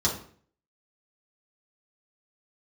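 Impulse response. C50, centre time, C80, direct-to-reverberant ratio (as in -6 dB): 7.0 dB, 25 ms, 12.0 dB, -5.5 dB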